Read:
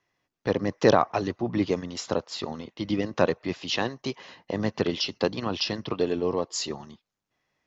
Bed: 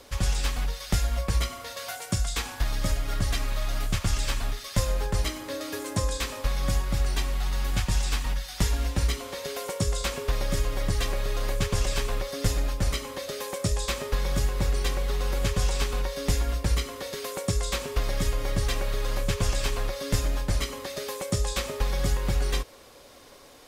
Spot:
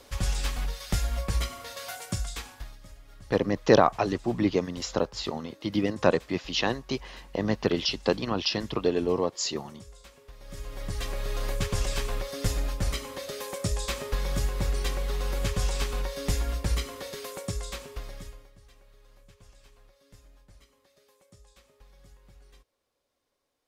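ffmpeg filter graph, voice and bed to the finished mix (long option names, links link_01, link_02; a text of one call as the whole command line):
ffmpeg -i stem1.wav -i stem2.wav -filter_complex "[0:a]adelay=2850,volume=0.5dB[link_01];[1:a]volume=17.5dB,afade=type=out:start_time=1.99:duration=0.79:silence=0.1,afade=type=in:start_time=10.39:duration=0.99:silence=0.1,afade=type=out:start_time=16.93:duration=1.57:silence=0.0446684[link_02];[link_01][link_02]amix=inputs=2:normalize=0" out.wav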